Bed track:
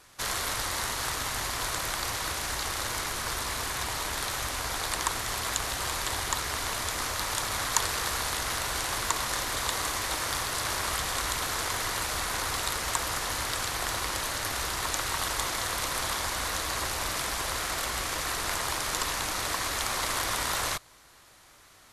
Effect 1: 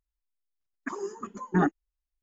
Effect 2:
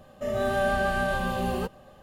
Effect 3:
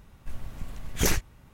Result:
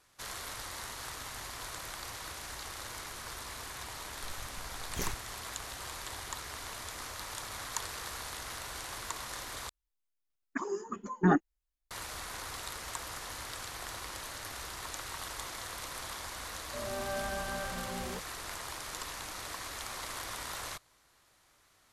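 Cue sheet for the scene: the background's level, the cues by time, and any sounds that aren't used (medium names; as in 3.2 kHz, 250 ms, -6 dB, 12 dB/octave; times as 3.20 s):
bed track -11 dB
3.96 s: add 3 -12.5 dB
9.69 s: replace with 1 -1 dB
16.52 s: add 2 -12 dB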